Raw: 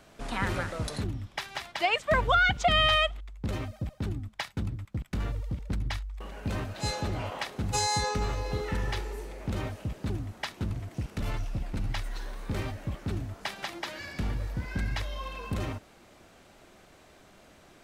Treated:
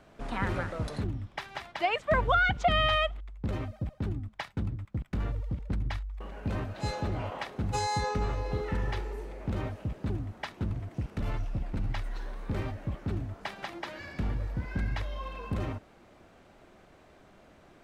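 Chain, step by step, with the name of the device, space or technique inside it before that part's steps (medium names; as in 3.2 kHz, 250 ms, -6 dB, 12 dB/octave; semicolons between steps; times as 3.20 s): through cloth (treble shelf 3.3 kHz -12 dB)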